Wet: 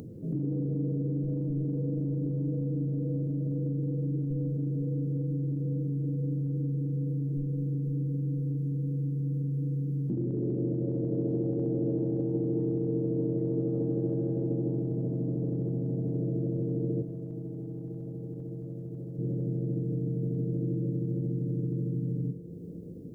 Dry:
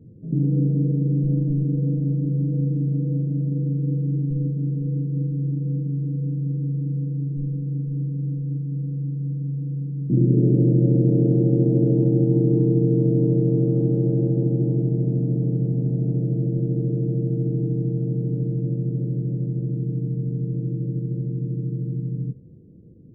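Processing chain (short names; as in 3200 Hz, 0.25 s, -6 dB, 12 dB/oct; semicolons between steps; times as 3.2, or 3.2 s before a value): compressor, threshold -20 dBFS, peak gain reduction 8 dB; limiter -23.5 dBFS, peak gain reduction 11 dB; tone controls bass -9 dB, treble +8 dB; upward compressor, threshold -43 dBFS; 17.02–19.19 graphic EQ 125/250/500 Hz -6/-9/-6 dB; reverb RT60 5.4 s, pre-delay 65 ms, DRR 14.5 dB; gain +5.5 dB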